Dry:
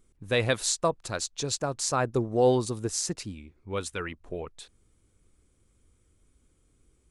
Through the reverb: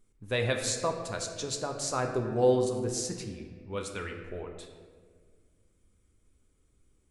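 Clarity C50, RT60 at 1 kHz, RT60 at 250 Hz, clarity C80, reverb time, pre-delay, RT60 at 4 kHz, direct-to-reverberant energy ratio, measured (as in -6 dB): 5.5 dB, 1.4 s, 2.2 s, 7.0 dB, 1.7 s, 4 ms, 1.0 s, 2.5 dB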